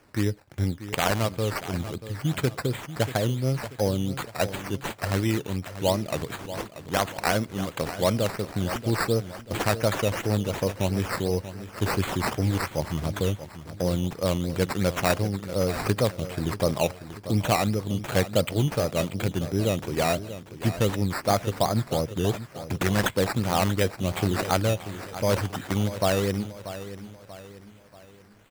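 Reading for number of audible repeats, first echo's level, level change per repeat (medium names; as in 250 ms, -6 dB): 4, -13.0 dB, -7.5 dB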